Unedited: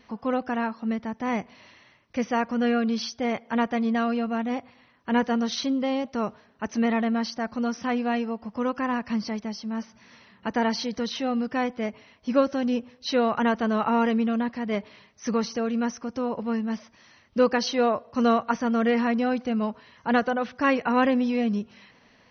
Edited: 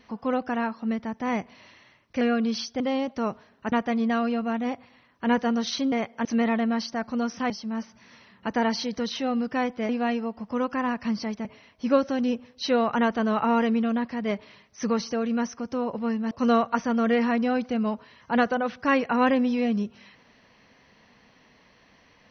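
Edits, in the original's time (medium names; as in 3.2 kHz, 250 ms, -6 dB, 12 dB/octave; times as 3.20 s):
2.21–2.65 s: delete
3.24–3.57 s: swap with 5.77–6.69 s
7.94–9.50 s: move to 11.89 s
16.75–18.07 s: delete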